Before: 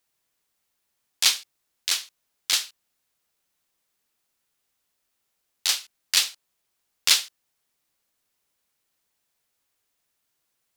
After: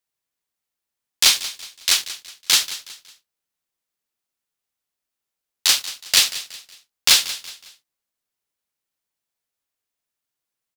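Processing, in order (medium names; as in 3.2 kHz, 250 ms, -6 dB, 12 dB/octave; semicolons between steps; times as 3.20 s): waveshaping leveller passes 3; feedback delay 184 ms, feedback 37%, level -15 dB; trim -2.5 dB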